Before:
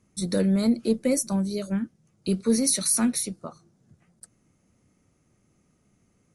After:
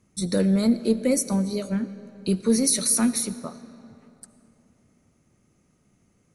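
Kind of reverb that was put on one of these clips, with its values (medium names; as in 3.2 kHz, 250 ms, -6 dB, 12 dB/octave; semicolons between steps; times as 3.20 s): algorithmic reverb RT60 3.1 s, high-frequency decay 0.7×, pre-delay 35 ms, DRR 14 dB; trim +1.5 dB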